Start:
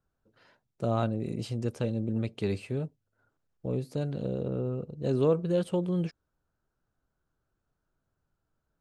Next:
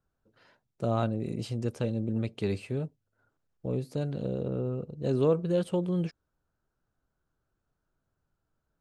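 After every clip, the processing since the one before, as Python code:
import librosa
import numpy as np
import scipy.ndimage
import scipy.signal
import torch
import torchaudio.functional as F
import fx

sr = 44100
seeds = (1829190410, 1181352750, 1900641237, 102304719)

y = x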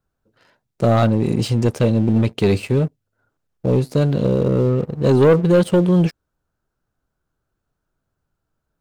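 y = fx.leveller(x, sr, passes=2)
y = y * librosa.db_to_amplitude(8.0)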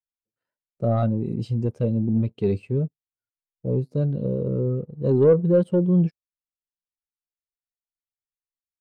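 y = fx.spectral_expand(x, sr, expansion=1.5)
y = y * librosa.db_to_amplitude(-2.5)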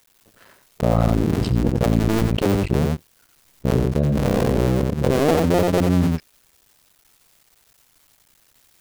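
y = fx.cycle_switch(x, sr, every=2, mode='muted')
y = y + 10.0 ** (-7.0 / 20.0) * np.pad(y, (int(89 * sr / 1000.0), 0))[:len(y)]
y = fx.env_flatten(y, sr, amount_pct=70)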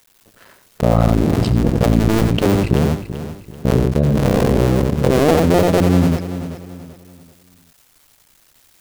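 y = fx.echo_feedback(x, sr, ms=386, feedback_pct=35, wet_db=-12.0)
y = y * librosa.db_to_amplitude(4.0)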